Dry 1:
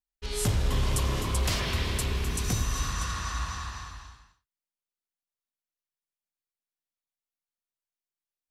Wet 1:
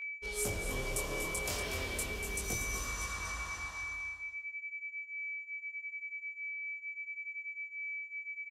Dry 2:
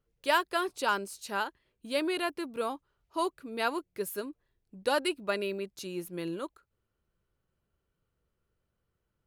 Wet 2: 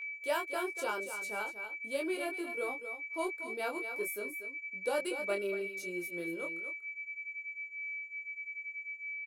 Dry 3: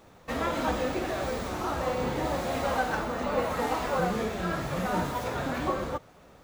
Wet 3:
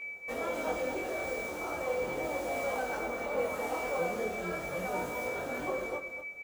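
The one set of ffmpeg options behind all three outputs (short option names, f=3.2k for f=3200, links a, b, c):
-filter_complex "[0:a]equalizer=f=125:t=o:w=1:g=-7,equalizer=f=250:t=o:w=1:g=-4,equalizer=f=500:t=o:w=1:g=3,equalizer=f=1k:t=o:w=1:g=-6,equalizer=f=2k:t=o:w=1:g=-8,equalizer=f=4k:t=o:w=1:g=-8,asplit=2[a][b];[b]aecho=0:1:239:0.299[c];[a][c]amix=inputs=2:normalize=0,aeval=exprs='val(0)+0.0112*sin(2*PI*2300*n/s)':c=same,lowshelf=f=170:g=-12,asplit=2[d][e];[e]asoftclip=type=tanh:threshold=-33.5dB,volume=-10dB[f];[d][f]amix=inputs=2:normalize=0,flanger=delay=20:depth=4:speed=0.38"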